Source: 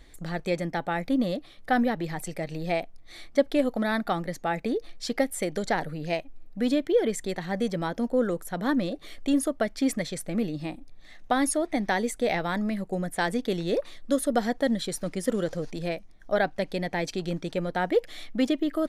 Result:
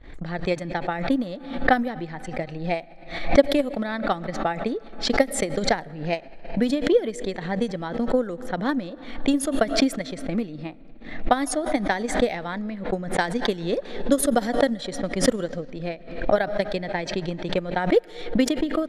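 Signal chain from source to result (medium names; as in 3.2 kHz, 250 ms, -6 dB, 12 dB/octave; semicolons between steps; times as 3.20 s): transient shaper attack +10 dB, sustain -4 dB; level-controlled noise filter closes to 2.1 kHz, open at -14.5 dBFS; on a send at -23.5 dB: reverberation RT60 3.3 s, pre-delay 70 ms; on the sum: swell ahead of each attack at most 87 dB/s; trim -3 dB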